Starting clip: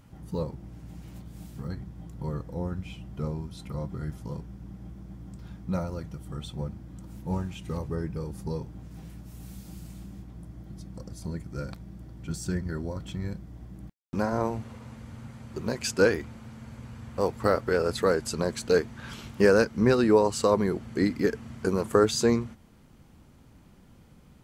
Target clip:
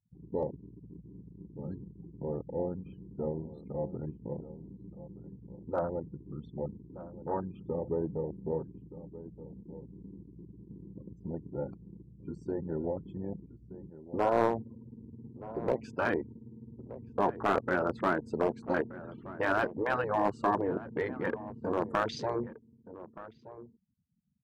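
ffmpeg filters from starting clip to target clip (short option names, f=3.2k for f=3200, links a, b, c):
-filter_complex "[0:a]afftfilt=real='re*gte(hypot(re,im),0.0126)':imag='im*gte(hypot(re,im),0.0126)':win_size=1024:overlap=0.75,afwtdn=0.02,afftfilt=real='re*lt(hypot(re,im),0.282)':imag='im*lt(hypot(re,im),0.282)':win_size=1024:overlap=0.75,bandpass=f=660:t=q:w=0.76:csg=0,aeval=exprs='clip(val(0),-1,0.0447)':c=same,asplit=2[a][b];[b]adelay=1224,volume=-15dB,highshelf=f=4k:g=-27.6[c];[a][c]amix=inputs=2:normalize=0,volume=5.5dB"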